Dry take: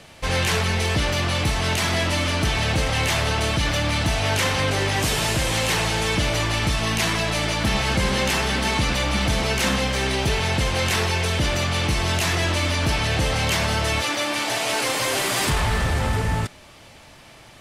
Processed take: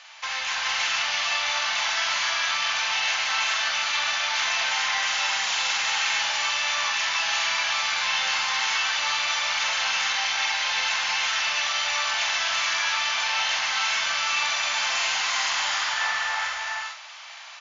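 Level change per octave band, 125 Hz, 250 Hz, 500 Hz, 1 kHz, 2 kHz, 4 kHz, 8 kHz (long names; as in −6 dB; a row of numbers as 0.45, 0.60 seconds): below −35 dB, below −25 dB, −16.0 dB, −1.5 dB, +1.0 dB, +1.0 dB, −1.0 dB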